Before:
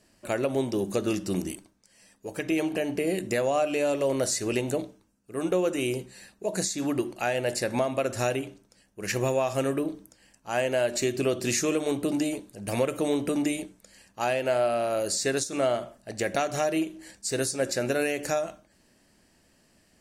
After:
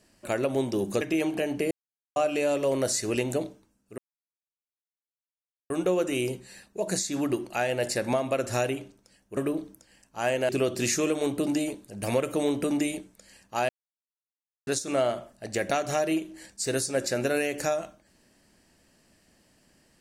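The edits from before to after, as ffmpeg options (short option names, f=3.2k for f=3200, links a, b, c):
-filter_complex "[0:a]asplit=9[a][b][c][d][e][f][g][h][i];[a]atrim=end=1.012[j];[b]atrim=start=2.388:end=3.09,asetpts=PTS-STARTPTS,afade=t=out:st=0.698:d=0.004:c=hsin[k];[c]atrim=start=3.09:end=3.54,asetpts=PTS-STARTPTS,volume=0[l];[d]atrim=start=3.54:end=5.36,asetpts=PTS-STARTPTS,afade=t=in:d=0.004:c=hsin,afade=t=out:st=1.816:d=0.004:c=hsin,apad=pad_dur=1.72[m];[e]atrim=start=5.36:end=9.032,asetpts=PTS-STARTPTS,afade=t=in:d=0.004:c=hsin[n];[f]atrim=start=9.678:end=10.802[o];[g]atrim=start=11.138:end=14.34,asetpts=PTS-STARTPTS,afade=t=out:st=3.198:d=0.004:c=hsin[p];[h]atrim=start=14.34:end=15.32,asetpts=PTS-STARTPTS,volume=0[q];[i]atrim=start=15.32,asetpts=PTS-STARTPTS,afade=t=in:d=0.004:c=hsin[r];[k][l][m][n]concat=n=4:v=0:a=1[s];[j][s]acrossfade=d=0.004:c1=hsin:c2=hsin[t];[t][o]acrossfade=d=0.004:c1=hsin:c2=hsin[u];[p][q][r]concat=n=3:v=0:a=1[v];[u][v]acrossfade=d=0.004:c1=hsin:c2=hsin"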